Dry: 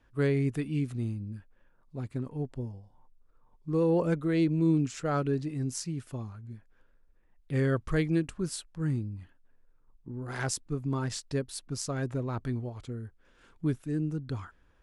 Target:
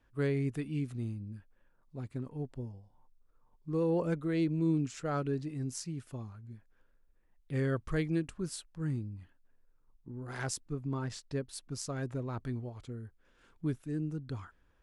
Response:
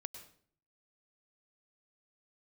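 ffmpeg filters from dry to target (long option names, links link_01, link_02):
-filter_complex "[0:a]asettb=1/sr,asplit=3[link_01][link_02][link_03];[link_01]atrim=end=10.724[link_04];[link_02]atrim=start=10.72:end=11.53,asetpts=PTS-STARTPTS,afade=type=in:duration=0.004:curve=qsin,afade=type=out:start_time=0.806:duration=0.004:curve=qsin,highshelf=frequency=5600:gain=-8[link_05];[link_03]atrim=start=11.526[link_06];[link_04][link_05]acrossfade=duration=0.004:curve1=hsin:curve2=qsin[link_07];[link_07][link_06]acrossfade=duration=0.004:curve1=qsin:curve2=hsin,volume=-4.5dB"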